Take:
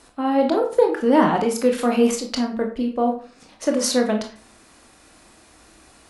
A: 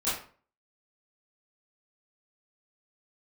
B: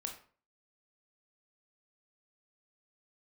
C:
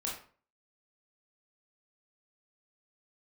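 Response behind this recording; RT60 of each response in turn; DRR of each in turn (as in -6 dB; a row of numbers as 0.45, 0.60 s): B; 0.45, 0.45, 0.45 s; -13.0, 2.5, -4.0 dB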